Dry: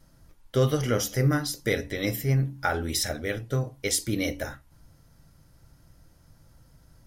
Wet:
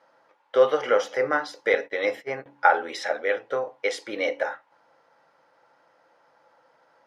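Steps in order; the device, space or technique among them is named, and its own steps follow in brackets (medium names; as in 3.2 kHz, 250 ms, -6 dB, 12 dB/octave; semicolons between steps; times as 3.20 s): high-pass 290 Hz 6 dB/octave; tin-can telephone (band-pass 640–2100 Hz; small resonant body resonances 510/840 Hz, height 8 dB, ringing for 25 ms); 1.74–2.46 s: gate -41 dBFS, range -20 dB; trim +8 dB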